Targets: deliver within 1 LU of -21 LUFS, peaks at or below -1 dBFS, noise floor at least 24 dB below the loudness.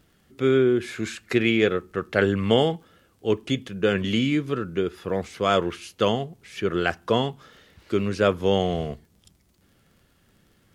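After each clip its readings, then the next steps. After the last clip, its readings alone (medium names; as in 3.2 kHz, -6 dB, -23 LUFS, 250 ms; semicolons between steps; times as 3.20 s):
tick rate 37 per s; loudness -24.5 LUFS; peak level -6.5 dBFS; loudness target -21.0 LUFS
-> de-click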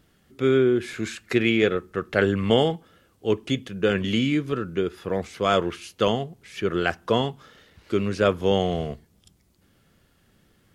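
tick rate 0.19 per s; loudness -24.5 LUFS; peak level -6.5 dBFS; loudness target -21.0 LUFS
-> trim +3.5 dB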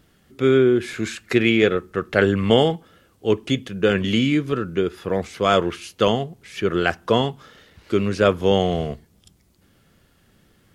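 loudness -21.0 LUFS; peak level -3.0 dBFS; noise floor -60 dBFS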